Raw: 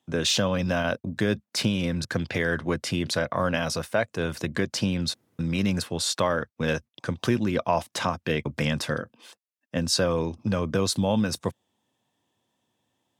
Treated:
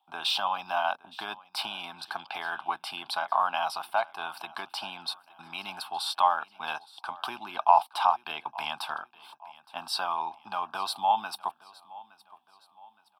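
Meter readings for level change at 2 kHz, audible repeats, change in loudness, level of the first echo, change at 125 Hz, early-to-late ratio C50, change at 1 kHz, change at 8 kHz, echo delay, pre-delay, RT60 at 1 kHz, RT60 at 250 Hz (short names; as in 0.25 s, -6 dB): -5.0 dB, 2, -3.5 dB, -21.0 dB, under -30 dB, none, +7.0 dB, -13.5 dB, 0.867 s, none, none, none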